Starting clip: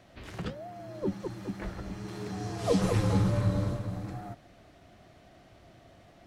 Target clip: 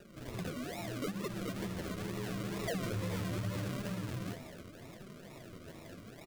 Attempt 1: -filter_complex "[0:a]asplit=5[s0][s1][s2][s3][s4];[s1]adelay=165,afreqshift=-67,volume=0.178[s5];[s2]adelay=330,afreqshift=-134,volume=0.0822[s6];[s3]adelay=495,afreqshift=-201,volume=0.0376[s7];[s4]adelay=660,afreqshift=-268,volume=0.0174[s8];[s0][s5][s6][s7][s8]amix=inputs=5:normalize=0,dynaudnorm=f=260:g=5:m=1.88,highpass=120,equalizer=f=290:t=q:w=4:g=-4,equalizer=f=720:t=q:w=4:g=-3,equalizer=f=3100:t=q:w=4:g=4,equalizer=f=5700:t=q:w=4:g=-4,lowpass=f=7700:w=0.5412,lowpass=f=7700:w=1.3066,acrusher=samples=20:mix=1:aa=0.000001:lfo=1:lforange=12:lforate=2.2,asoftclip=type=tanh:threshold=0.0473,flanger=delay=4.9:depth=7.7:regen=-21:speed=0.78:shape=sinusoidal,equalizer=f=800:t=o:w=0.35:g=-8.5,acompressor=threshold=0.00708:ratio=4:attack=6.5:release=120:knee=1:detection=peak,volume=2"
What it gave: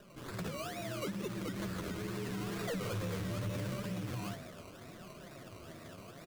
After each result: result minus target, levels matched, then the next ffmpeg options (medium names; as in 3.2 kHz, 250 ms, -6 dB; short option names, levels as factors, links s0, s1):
saturation: distortion +9 dB; decimation with a swept rate: distortion -6 dB
-filter_complex "[0:a]asplit=5[s0][s1][s2][s3][s4];[s1]adelay=165,afreqshift=-67,volume=0.178[s5];[s2]adelay=330,afreqshift=-134,volume=0.0822[s6];[s3]adelay=495,afreqshift=-201,volume=0.0376[s7];[s4]adelay=660,afreqshift=-268,volume=0.0174[s8];[s0][s5][s6][s7][s8]amix=inputs=5:normalize=0,dynaudnorm=f=260:g=5:m=1.88,highpass=120,equalizer=f=290:t=q:w=4:g=-4,equalizer=f=720:t=q:w=4:g=-3,equalizer=f=3100:t=q:w=4:g=4,equalizer=f=5700:t=q:w=4:g=-4,lowpass=f=7700:w=0.5412,lowpass=f=7700:w=1.3066,acrusher=samples=20:mix=1:aa=0.000001:lfo=1:lforange=12:lforate=2.2,asoftclip=type=tanh:threshold=0.133,flanger=delay=4.9:depth=7.7:regen=-21:speed=0.78:shape=sinusoidal,equalizer=f=800:t=o:w=0.35:g=-8.5,acompressor=threshold=0.00708:ratio=4:attack=6.5:release=120:knee=1:detection=peak,volume=2"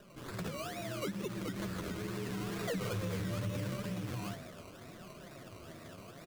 decimation with a swept rate: distortion -6 dB
-filter_complex "[0:a]asplit=5[s0][s1][s2][s3][s4];[s1]adelay=165,afreqshift=-67,volume=0.178[s5];[s2]adelay=330,afreqshift=-134,volume=0.0822[s6];[s3]adelay=495,afreqshift=-201,volume=0.0376[s7];[s4]adelay=660,afreqshift=-268,volume=0.0174[s8];[s0][s5][s6][s7][s8]amix=inputs=5:normalize=0,dynaudnorm=f=260:g=5:m=1.88,highpass=120,equalizer=f=290:t=q:w=4:g=-4,equalizer=f=720:t=q:w=4:g=-3,equalizer=f=3100:t=q:w=4:g=4,equalizer=f=5700:t=q:w=4:g=-4,lowpass=f=7700:w=0.5412,lowpass=f=7700:w=1.3066,acrusher=samples=40:mix=1:aa=0.000001:lfo=1:lforange=24:lforate=2.2,asoftclip=type=tanh:threshold=0.133,flanger=delay=4.9:depth=7.7:regen=-21:speed=0.78:shape=sinusoidal,equalizer=f=800:t=o:w=0.35:g=-8.5,acompressor=threshold=0.00708:ratio=4:attack=6.5:release=120:knee=1:detection=peak,volume=2"